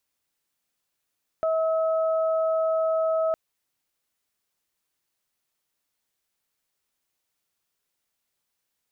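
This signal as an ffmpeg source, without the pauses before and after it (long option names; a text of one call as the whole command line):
ffmpeg -f lavfi -i "aevalsrc='0.0891*sin(2*PI*644*t)+0.0266*sin(2*PI*1288*t)':duration=1.91:sample_rate=44100" out.wav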